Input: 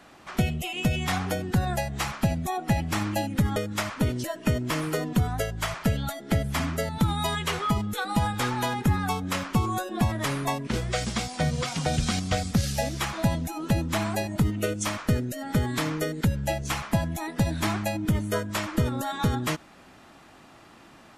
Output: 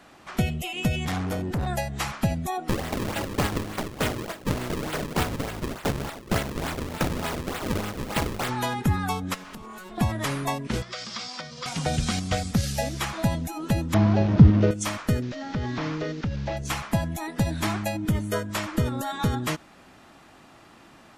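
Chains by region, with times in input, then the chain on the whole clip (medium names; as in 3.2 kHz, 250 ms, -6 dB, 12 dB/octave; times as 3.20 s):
1.05–1.67 s: bass shelf 460 Hz +8 dB + valve stage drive 24 dB, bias 0.4
2.68–8.48 s: spectral contrast reduction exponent 0.38 + Savitzky-Golay filter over 15 samples + decimation with a swept rate 35×, swing 160% 3.4 Hz
9.34–9.98 s: comb filter that takes the minimum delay 4.7 ms + compression 10:1, threshold -37 dBFS
10.82–11.66 s: compression 10:1, threshold -29 dBFS + cabinet simulation 270–6600 Hz, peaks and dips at 300 Hz -6 dB, 430 Hz -7 dB, 730 Hz -5 dB, 1.2 kHz +6 dB, 3.5 kHz +3 dB, 5 kHz +9 dB
13.94–14.71 s: one-bit delta coder 32 kbps, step -26.5 dBFS + high-pass 100 Hz + tilt EQ -4.5 dB/octave
15.22–16.57 s: one-bit delta coder 32 kbps, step -39 dBFS + hard clipper -15.5 dBFS + compression 4:1, threshold -24 dBFS
whole clip: none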